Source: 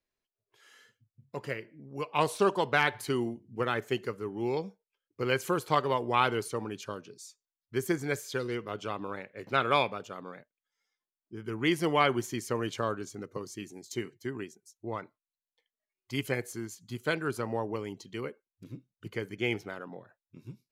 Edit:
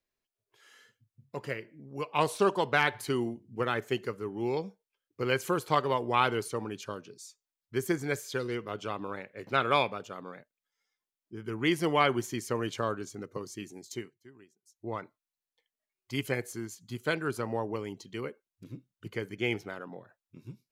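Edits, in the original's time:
13.88–14.86 s: dip -17.5 dB, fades 0.27 s

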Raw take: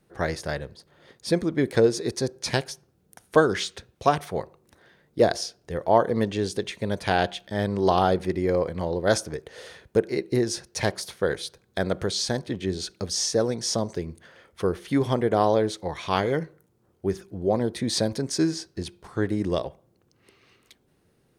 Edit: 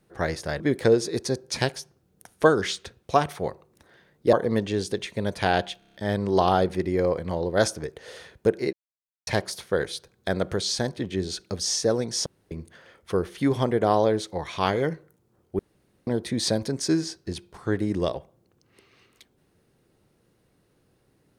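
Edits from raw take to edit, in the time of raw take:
0.60–1.52 s: delete
5.25–5.98 s: delete
7.44 s: stutter 0.03 s, 6 plays
10.23–10.77 s: mute
13.76–14.01 s: room tone
17.09–17.57 s: room tone

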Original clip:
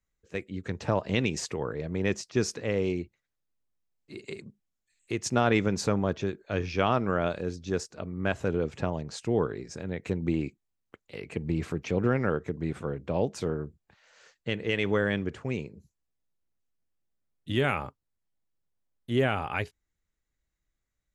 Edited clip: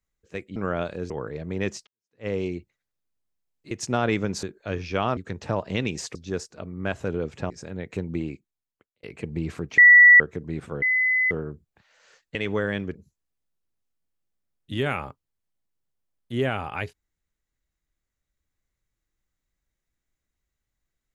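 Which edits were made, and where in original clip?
0.56–1.54 s: swap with 7.01–7.55 s
2.31–2.71 s: fade in exponential
4.15–5.14 s: delete
5.86–6.27 s: delete
8.90–9.63 s: delete
10.16–11.16 s: fade out
11.91–12.33 s: bleep 1.95 kHz -8 dBFS
12.95–13.44 s: bleep 2.02 kHz -18.5 dBFS
14.48–14.73 s: delete
15.33–15.73 s: delete

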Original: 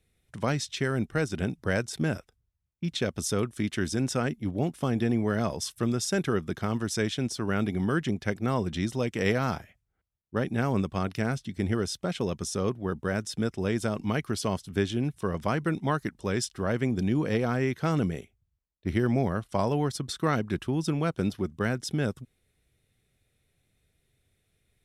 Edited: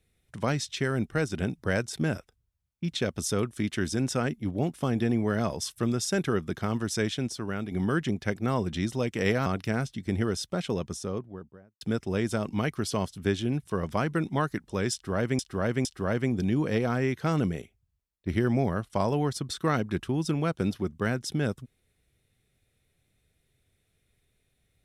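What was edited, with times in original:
7.11–7.71 s: fade out, to -8 dB
9.46–10.97 s: delete
12.12–13.32 s: studio fade out
16.44–16.90 s: loop, 3 plays

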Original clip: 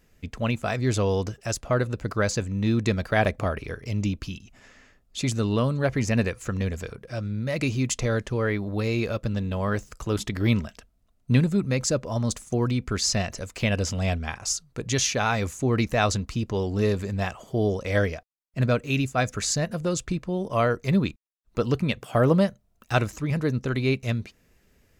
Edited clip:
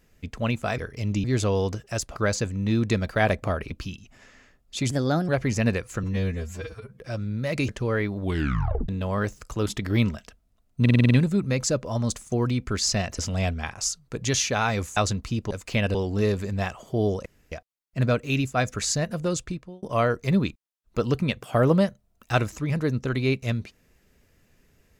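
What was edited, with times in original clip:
1.70–2.12 s: delete
3.67–4.13 s: move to 0.78 s
5.33–5.80 s: speed 125%
6.55–7.03 s: stretch 2×
7.72–8.19 s: delete
8.70 s: tape stop 0.69 s
11.31 s: stutter 0.05 s, 7 plays
13.39–13.83 s: move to 16.55 s
15.61–16.01 s: delete
17.86–18.12 s: room tone
19.94–20.43 s: fade out

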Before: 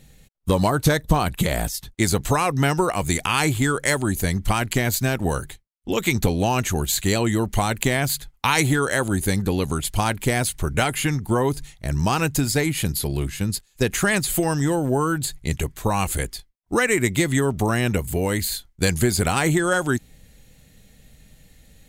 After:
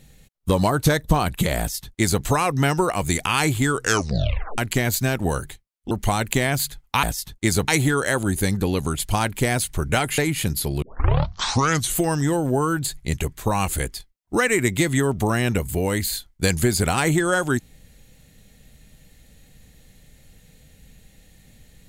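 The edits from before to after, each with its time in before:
1.59–2.24 s: copy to 8.53 s
3.73 s: tape stop 0.85 s
5.91–7.41 s: delete
11.03–12.57 s: delete
13.21 s: tape start 1.17 s

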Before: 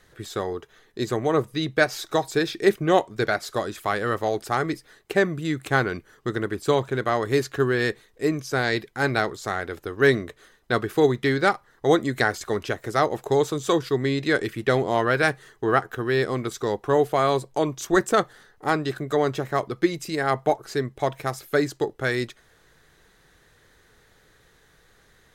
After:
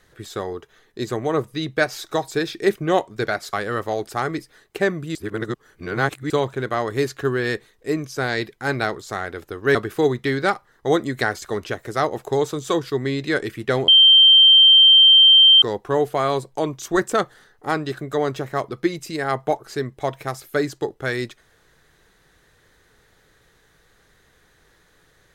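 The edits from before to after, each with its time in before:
3.53–3.88 s: delete
5.50–6.65 s: reverse
10.10–10.74 s: delete
14.87–16.61 s: bleep 3.14 kHz -7.5 dBFS

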